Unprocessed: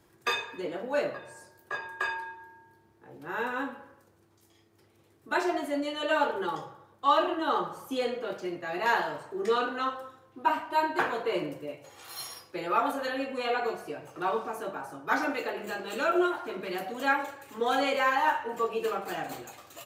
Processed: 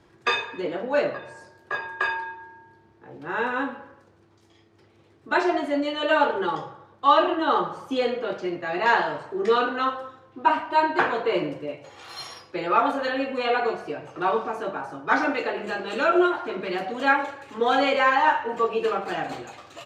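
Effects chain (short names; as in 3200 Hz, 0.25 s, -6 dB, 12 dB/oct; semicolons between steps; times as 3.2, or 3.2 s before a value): LPF 4800 Hz 12 dB/oct; gain +6 dB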